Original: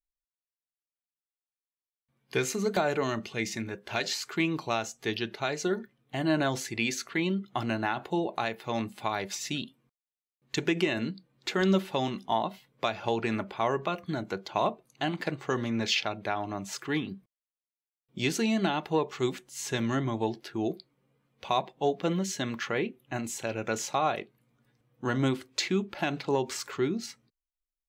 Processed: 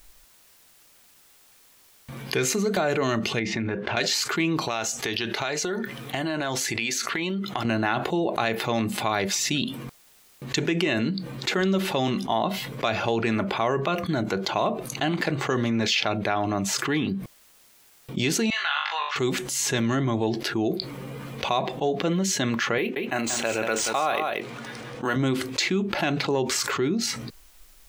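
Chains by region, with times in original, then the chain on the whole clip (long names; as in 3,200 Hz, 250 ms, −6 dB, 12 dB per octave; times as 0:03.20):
0:03.39–0:03.97: low-pass filter 2,600 Hz + downward compressor 2 to 1, threshold −41 dBFS
0:04.62–0:07.65: low-shelf EQ 440 Hz −8 dB + downward compressor, threshold −38 dBFS
0:18.50–0:19.16: high-pass filter 1,200 Hz 24 dB per octave + high-frequency loss of the air 190 metres + flutter between parallel walls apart 3.5 metres, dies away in 0.28 s
0:22.78–0:25.16: high-pass filter 550 Hz 6 dB per octave + single-tap delay 180 ms −10 dB + linearly interpolated sample-rate reduction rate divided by 3×
whole clip: dynamic equaliser 890 Hz, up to −5 dB, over −48 dBFS, Q 6.7; envelope flattener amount 70%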